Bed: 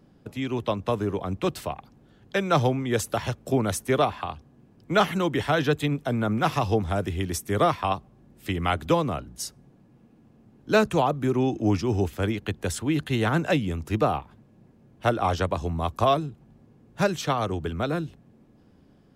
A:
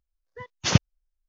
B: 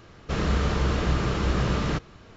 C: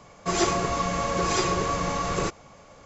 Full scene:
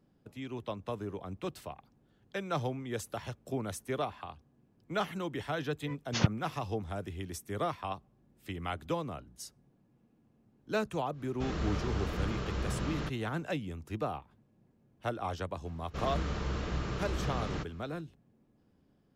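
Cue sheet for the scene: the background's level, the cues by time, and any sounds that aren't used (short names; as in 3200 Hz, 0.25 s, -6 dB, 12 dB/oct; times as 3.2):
bed -12 dB
5.49 add A -8 dB + treble ducked by the level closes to 1900 Hz, closed at -17 dBFS
11.11 add B -10.5 dB, fades 0.10 s
15.65 add B -10.5 dB
not used: C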